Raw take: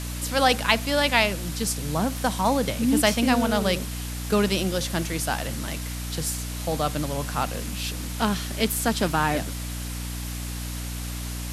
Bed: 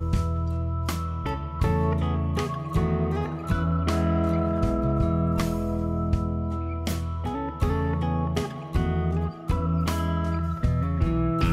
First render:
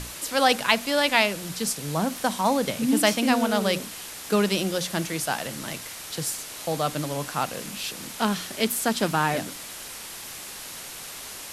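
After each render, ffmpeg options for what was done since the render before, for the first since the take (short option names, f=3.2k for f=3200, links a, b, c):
-af "bandreject=f=60:t=h:w=6,bandreject=f=120:t=h:w=6,bandreject=f=180:t=h:w=6,bandreject=f=240:t=h:w=6,bandreject=f=300:t=h:w=6"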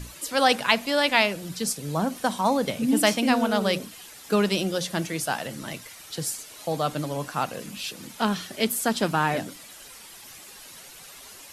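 -af "afftdn=nr=10:nf=-39"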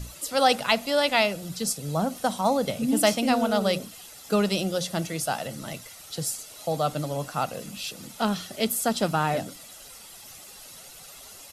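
-af "equalizer=f=1.9k:t=o:w=1.2:g=-5,aecho=1:1:1.5:0.31"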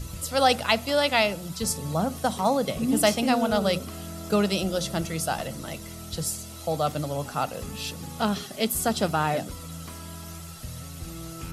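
-filter_complex "[1:a]volume=-15dB[a];[0:a][a]amix=inputs=2:normalize=0"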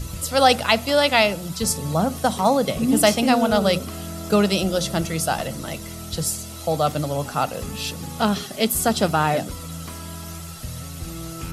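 -af "volume=5dB,alimiter=limit=-2dB:level=0:latency=1"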